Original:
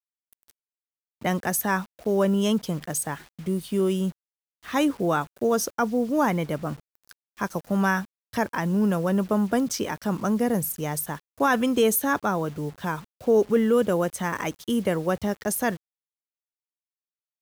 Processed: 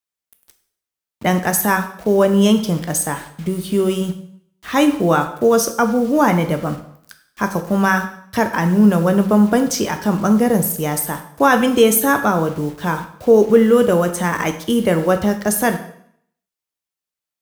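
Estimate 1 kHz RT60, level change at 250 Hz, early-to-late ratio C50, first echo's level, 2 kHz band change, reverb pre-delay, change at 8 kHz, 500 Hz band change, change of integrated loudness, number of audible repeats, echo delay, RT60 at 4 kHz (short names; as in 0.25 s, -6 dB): 0.65 s, +8.5 dB, 10.5 dB, none, +8.5 dB, 6 ms, +8.5 dB, +8.5 dB, +8.5 dB, none, none, 0.60 s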